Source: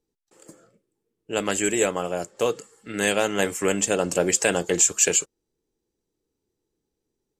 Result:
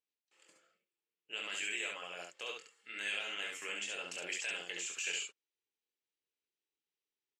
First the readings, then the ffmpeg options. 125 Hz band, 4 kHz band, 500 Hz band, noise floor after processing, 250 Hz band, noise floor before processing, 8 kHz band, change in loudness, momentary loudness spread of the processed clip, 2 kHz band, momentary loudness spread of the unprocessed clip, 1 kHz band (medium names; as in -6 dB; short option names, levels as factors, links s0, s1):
under -30 dB, -8.0 dB, -26.5 dB, under -85 dBFS, -29.5 dB, -82 dBFS, -21.5 dB, -16.5 dB, 8 LU, -10.0 dB, 10 LU, -19.5 dB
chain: -filter_complex "[0:a]alimiter=limit=0.15:level=0:latency=1:release=18,bandpass=f=2700:t=q:w=2.2:csg=0,asplit=2[s0][s1];[s1]aecho=0:1:23|69:0.501|0.708[s2];[s0][s2]amix=inputs=2:normalize=0,volume=0.708"